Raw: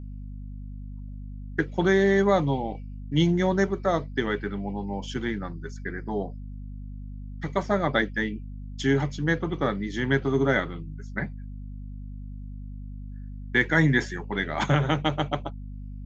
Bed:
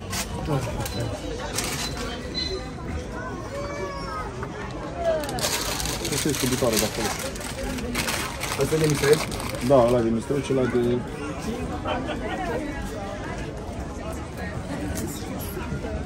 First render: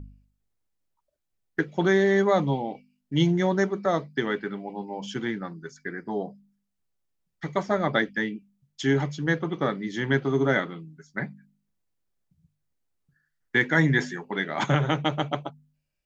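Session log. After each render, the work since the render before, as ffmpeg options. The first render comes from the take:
-af "bandreject=f=50:t=h:w=4,bandreject=f=100:t=h:w=4,bandreject=f=150:t=h:w=4,bandreject=f=200:t=h:w=4,bandreject=f=250:t=h:w=4"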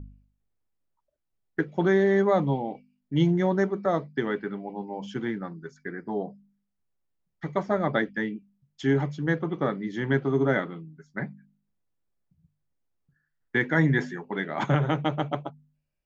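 -af "highshelf=f=2700:g=-11.5"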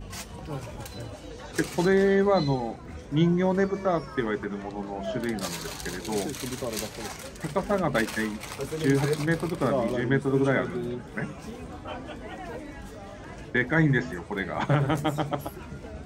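-filter_complex "[1:a]volume=0.316[s0];[0:a][s0]amix=inputs=2:normalize=0"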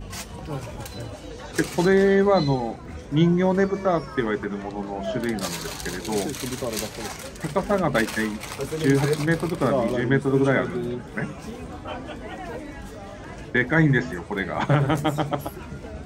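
-af "volume=1.5"

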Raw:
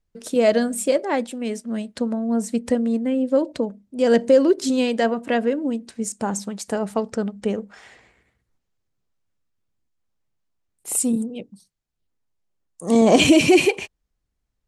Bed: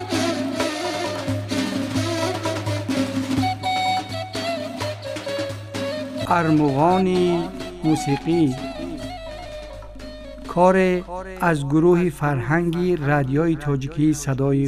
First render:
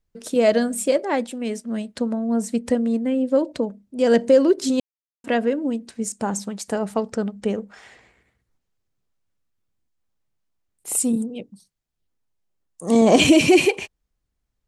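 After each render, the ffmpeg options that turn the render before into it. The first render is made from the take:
-filter_complex "[0:a]asplit=3[s0][s1][s2];[s0]atrim=end=4.8,asetpts=PTS-STARTPTS,afade=t=out:st=4.796:d=0.004:c=hsin[s3];[s1]atrim=start=4.8:end=5.24,asetpts=PTS-STARTPTS,volume=0[s4];[s2]atrim=start=5.24,asetpts=PTS-STARTPTS,afade=t=in:d=0.004:c=hsin[s5];[s3][s4][s5]concat=n=3:v=0:a=1"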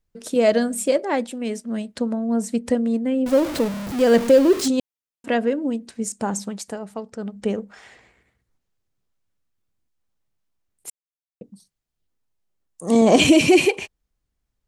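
-filter_complex "[0:a]asettb=1/sr,asplit=3[s0][s1][s2];[s0]atrim=end=3.264[s3];[s1]atrim=start=3.26:end=4.68,asetpts=PTS-STARTPTS,afade=t=in:d=0.004:c=qsin,afade=t=out:st=1.416:d=0.004:c=qsin,aeval=exprs='val(0)+0.5*0.0631*sgn(val(0))':c=same[s4];[s2]atrim=start=4.676[s5];[s3][s4]acrossfade=d=0.004:c1=hsin:c2=qsin[s6];[s6][s5]acrossfade=d=0.004:c1=qsin:c2=hsin,asplit=5[s7][s8][s9][s10][s11];[s7]atrim=end=6.77,asetpts=PTS-STARTPTS,afade=t=out:st=6.58:d=0.19:silence=0.375837[s12];[s8]atrim=start=6.77:end=7.18,asetpts=PTS-STARTPTS,volume=0.376[s13];[s9]atrim=start=7.18:end=10.9,asetpts=PTS-STARTPTS,afade=t=in:d=0.19:silence=0.375837,afade=t=out:st=3.716:d=0.004:c=hsin[s14];[s10]atrim=start=10.9:end=11.41,asetpts=PTS-STARTPTS,volume=0[s15];[s11]atrim=start=11.41,asetpts=PTS-STARTPTS,afade=t=in:d=0.004:c=hsin[s16];[s12][s13][s14][s15][s16]concat=n=5:v=0:a=1"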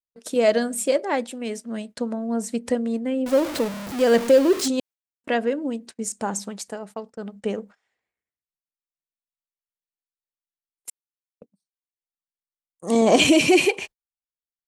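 -af "agate=range=0.0355:threshold=0.0126:ratio=16:detection=peak,lowshelf=f=240:g=-8"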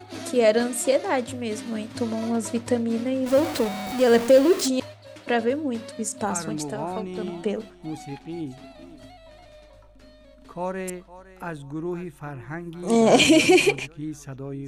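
-filter_complex "[1:a]volume=0.188[s0];[0:a][s0]amix=inputs=2:normalize=0"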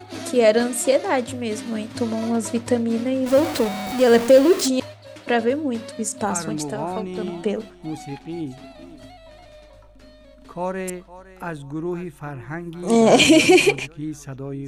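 -af "volume=1.41,alimiter=limit=0.794:level=0:latency=1"

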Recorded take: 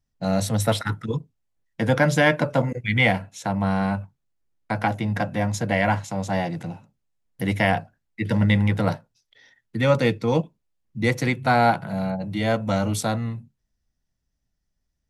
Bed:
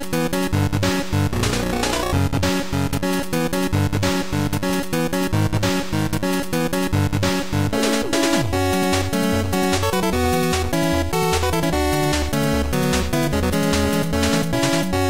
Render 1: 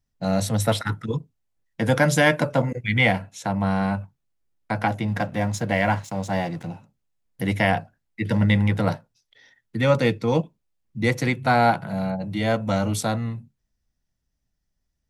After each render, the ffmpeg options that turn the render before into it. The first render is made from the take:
-filter_complex "[0:a]asettb=1/sr,asplit=3[s0][s1][s2];[s0]atrim=end=1.854[s3];[s1]atrim=start=1.85:end=2.49,asetpts=PTS-STARTPTS,afade=t=in:d=0.004:c=qsin,afade=t=out:st=0.636:d=0.004:c=qsin,equalizer=f=10000:w=0.65:g=7.5[s4];[s2]atrim=start=2.486[s5];[s3][s4]acrossfade=d=0.004:c1=hsin:c2=qsin[s6];[s6][s5]acrossfade=d=0.004:c1=qsin:c2=hsin,asettb=1/sr,asplit=3[s7][s8][s9];[s7]atrim=end=5.084[s10];[s8]atrim=start=5.08:end=6.67,asetpts=PTS-STARTPTS,afade=t=in:d=0.004:c=qsin,afade=t=out:st=1.586:d=0.004:c=qsin,aeval=exprs='sgn(val(0))*max(abs(val(0))-0.00447,0)':c=same[s11];[s9]atrim=start=6.666[s12];[s10][s11]acrossfade=d=0.004:c1=hsin:c2=qsin[s13];[s13][s12]acrossfade=d=0.004:c1=qsin:c2=hsin"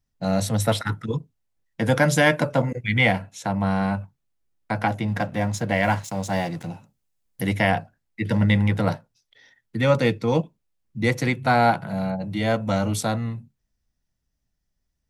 -filter_complex "[0:a]asettb=1/sr,asplit=3[s0][s1][s2];[s0]atrim=end=5.834[s3];[s1]atrim=start=5.83:end=7.49,asetpts=PTS-STARTPTS,afade=t=in:d=0.004:c=qsin,afade=t=out:st=1.656:d=0.004:c=qsin,highshelf=f=4800:g=7[s4];[s2]atrim=start=7.486[s5];[s3][s4]acrossfade=d=0.004:c1=hsin:c2=qsin[s6];[s6][s5]acrossfade=d=0.004:c1=qsin:c2=hsin"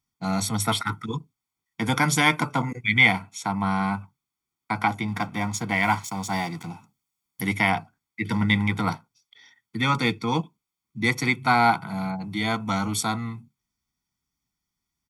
-af "highpass=f=370:p=1,aecho=1:1:0.9:0.89"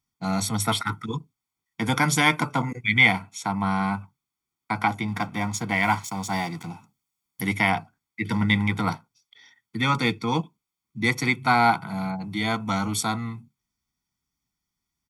-af anull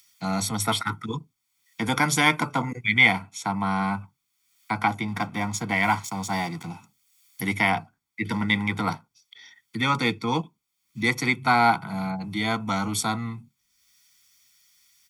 -filter_complex "[0:a]acrossover=split=200|1600[s0][s1][s2];[s0]alimiter=level_in=1.78:limit=0.0631:level=0:latency=1,volume=0.562[s3];[s2]acompressor=mode=upward:threshold=0.00891:ratio=2.5[s4];[s3][s1][s4]amix=inputs=3:normalize=0"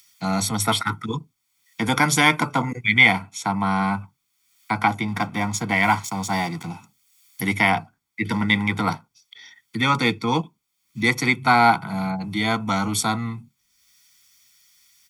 -af "volume=1.5,alimiter=limit=0.708:level=0:latency=1"

